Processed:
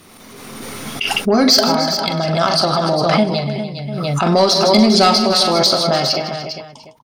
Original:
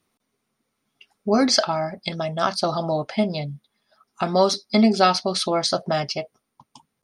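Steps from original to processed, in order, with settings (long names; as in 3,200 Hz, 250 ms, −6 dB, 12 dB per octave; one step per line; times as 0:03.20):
slap from a distant wall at 50 metres, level −10 dB
dynamic equaliser 4,500 Hz, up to +7 dB, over −40 dBFS, Q 2.6
soft clipping −9.5 dBFS, distortion −17 dB
on a send: multi-tap delay 42/99/156/299/404 ms −10.5/−20/−13/−17.5/−9 dB
on the sum: background raised ahead of every attack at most 26 dB per second
level +5 dB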